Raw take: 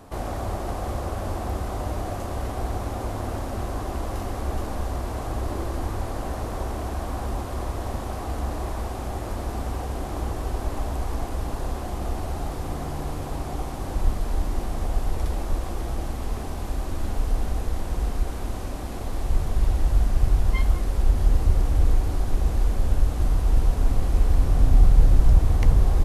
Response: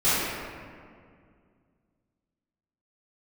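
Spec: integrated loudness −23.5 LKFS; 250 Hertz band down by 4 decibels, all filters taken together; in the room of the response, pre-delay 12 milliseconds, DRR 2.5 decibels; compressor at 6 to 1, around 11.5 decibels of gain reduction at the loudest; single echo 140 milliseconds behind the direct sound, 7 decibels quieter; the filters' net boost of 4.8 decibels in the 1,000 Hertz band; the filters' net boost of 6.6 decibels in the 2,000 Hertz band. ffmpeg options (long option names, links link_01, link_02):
-filter_complex "[0:a]equalizer=frequency=250:width_type=o:gain=-6,equalizer=frequency=1000:width_type=o:gain=5.5,equalizer=frequency=2000:width_type=o:gain=6.5,acompressor=threshold=-22dB:ratio=6,aecho=1:1:140:0.447,asplit=2[link_01][link_02];[1:a]atrim=start_sample=2205,adelay=12[link_03];[link_02][link_03]afir=irnorm=-1:irlink=0,volume=-20dB[link_04];[link_01][link_04]amix=inputs=2:normalize=0,volume=4.5dB"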